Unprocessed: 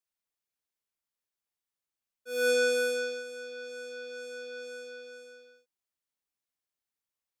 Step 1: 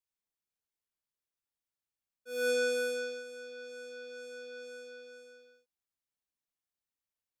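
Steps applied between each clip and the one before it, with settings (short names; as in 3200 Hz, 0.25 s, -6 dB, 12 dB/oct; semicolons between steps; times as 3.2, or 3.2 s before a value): low shelf 210 Hz +6 dB; gain -5 dB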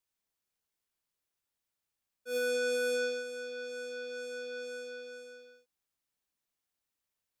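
limiter -31.5 dBFS, peak gain reduction 7.5 dB; gain +5 dB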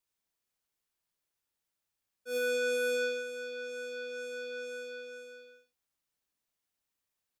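early reflections 64 ms -11 dB, 75 ms -11.5 dB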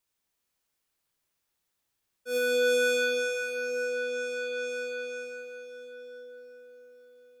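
reverb RT60 5.8 s, pre-delay 0.126 s, DRR 2.5 dB; gain +4.5 dB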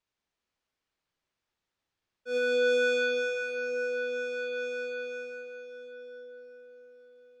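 air absorption 120 m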